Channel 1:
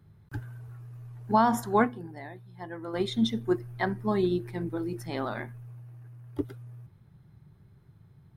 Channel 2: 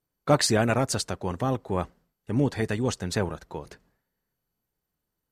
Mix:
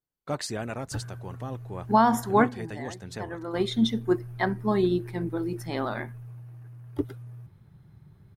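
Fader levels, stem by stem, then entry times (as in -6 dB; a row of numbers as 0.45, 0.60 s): +2.5, -10.5 dB; 0.60, 0.00 s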